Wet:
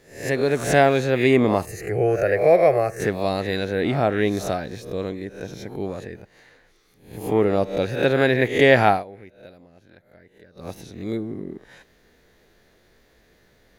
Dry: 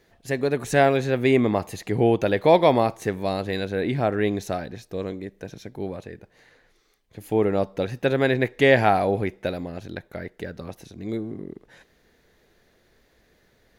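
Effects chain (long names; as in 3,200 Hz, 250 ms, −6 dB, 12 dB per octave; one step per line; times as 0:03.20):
peak hold with a rise ahead of every peak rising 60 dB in 0.47 s
0:01.65–0:03.00: phaser with its sweep stopped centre 940 Hz, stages 6
0:08.90–0:10.69: duck −20.5 dB, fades 0.14 s
level +1.5 dB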